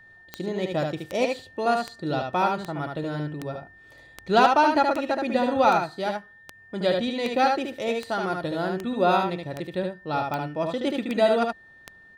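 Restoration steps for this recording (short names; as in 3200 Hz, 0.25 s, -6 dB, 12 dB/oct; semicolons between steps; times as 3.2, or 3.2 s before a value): clip repair -8.5 dBFS; de-click; notch 1800 Hz, Q 30; inverse comb 74 ms -4 dB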